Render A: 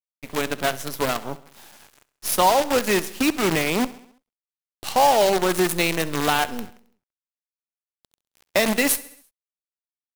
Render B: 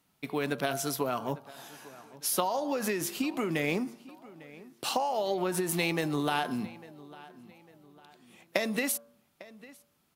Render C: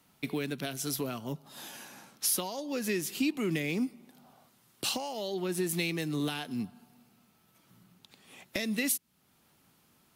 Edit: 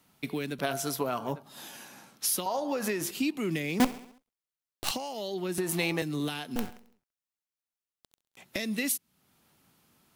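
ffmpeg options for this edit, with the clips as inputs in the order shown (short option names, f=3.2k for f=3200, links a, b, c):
-filter_complex "[1:a]asplit=3[a][b][c];[0:a]asplit=2[d][e];[2:a]asplit=6[f][g][h][i][j][k];[f]atrim=end=0.592[l];[a]atrim=start=0.588:end=1.432[m];[g]atrim=start=1.428:end=2.462[n];[b]atrim=start=2.458:end=3.112[o];[h]atrim=start=3.108:end=3.802[p];[d]atrim=start=3.798:end=4.912[q];[i]atrim=start=4.908:end=5.582[r];[c]atrim=start=5.578:end=6.022[s];[j]atrim=start=6.018:end=6.562[t];[e]atrim=start=6.558:end=8.372[u];[k]atrim=start=8.368[v];[l][m]acrossfade=d=0.004:c1=hsin:c2=hsin[w];[w][n]acrossfade=d=0.004:c1=hsin:c2=hsin[x];[x][o]acrossfade=d=0.004:c1=hsin:c2=hsin[y];[y][p]acrossfade=d=0.004:c1=hsin:c2=hsin[z];[z][q]acrossfade=d=0.004:c1=hsin:c2=hsin[aa];[aa][r]acrossfade=d=0.004:c1=hsin:c2=hsin[ab];[ab][s]acrossfade=d=0.004:c1=hsin:c2=hsin[ac];[ac][t]acrossfade=d=0.004:c1=hsin:c2=hsin[ad];[ad][u]acrossfade=d=0.004:c1=hsin:c2=hsin[ae];[ae][v]acrossfade=d=0.004:c1=hsin:c2=hsin"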